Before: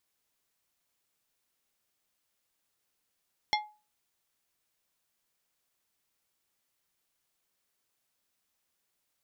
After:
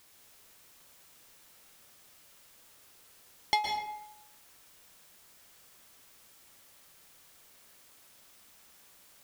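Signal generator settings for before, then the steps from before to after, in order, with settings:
glass hit plate, lowest mode 845 Hz, decay 0.33 s, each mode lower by 1.5 dB, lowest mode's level -23.5 dB
power-law curve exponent 0.7; plate-style reverb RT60 0.85 s, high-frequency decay 0.65×, pre-delay 0.105 s, DRR 2 dB

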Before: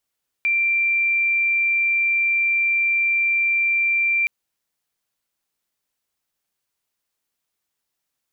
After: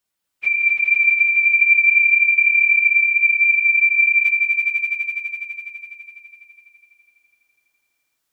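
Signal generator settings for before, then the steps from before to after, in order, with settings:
tone sine 2360 Hz -16.5 dBFS 3.82 s
phase scrambler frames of 50 ms; on a send: swelling echo 83 ms, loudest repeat 5, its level -6 dB

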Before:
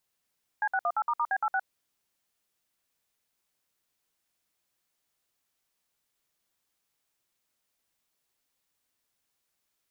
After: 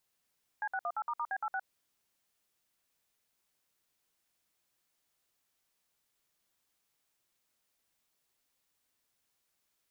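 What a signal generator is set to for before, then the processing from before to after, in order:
DTMF "C618**B86", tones 56 ms, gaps 59 ms, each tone -27 dBFS
limiter -28.5 dBFS

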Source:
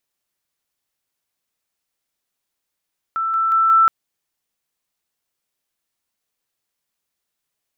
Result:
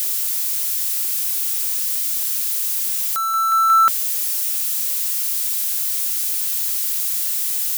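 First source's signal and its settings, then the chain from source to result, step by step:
level ladder 1330 Hz -18.5 dBFS, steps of 3 dB, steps 4, 0.18 s 0.00 s
switching spikes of -18 dBFS

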